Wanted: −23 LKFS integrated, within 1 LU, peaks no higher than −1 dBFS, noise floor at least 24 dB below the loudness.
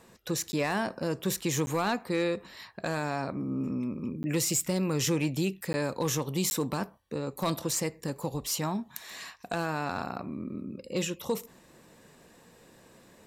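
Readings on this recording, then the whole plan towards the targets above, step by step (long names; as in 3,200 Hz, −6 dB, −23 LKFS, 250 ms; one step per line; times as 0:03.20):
share of clipped samples 0.3%; peaks flattened at −19.5 dBFS; number of dropouts 5; longest dropout 10 ms; integrated loudness −31.5 LKFS; sample peak −19.5 dBFS; target loudness −23.0 LKFS
→ clipped peaks rebuilt −19.5 dBFS
repair the gap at 0:00.52/0:01.66/0:04.23/0:05.73/0:06.50, 10 ms
level +8.5 dB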